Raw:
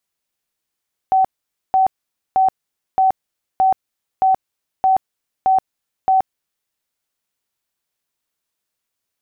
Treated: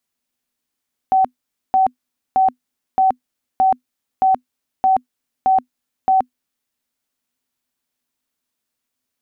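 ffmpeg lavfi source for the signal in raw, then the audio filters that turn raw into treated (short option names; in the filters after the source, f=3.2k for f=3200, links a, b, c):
-f lavfi -i "aevalsrc='0.299*sin(2*PI*761*mod(t,0.62))*lt(mod(t,0.62),96/761)':d=5.58:s=44100"
-af "equalizer=f=250:w=6.2:g=14"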